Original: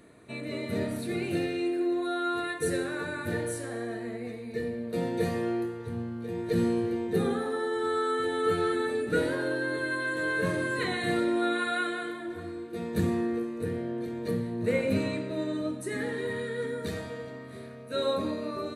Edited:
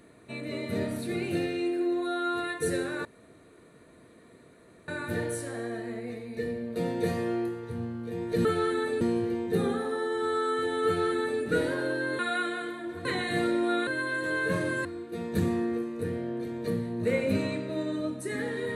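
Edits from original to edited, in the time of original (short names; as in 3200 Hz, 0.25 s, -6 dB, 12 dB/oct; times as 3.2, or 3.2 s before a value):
3.05 insert room tone 1.83 s
8.47–9.03 copy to 6.62
9.8–10.78 swap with 11.6–12.46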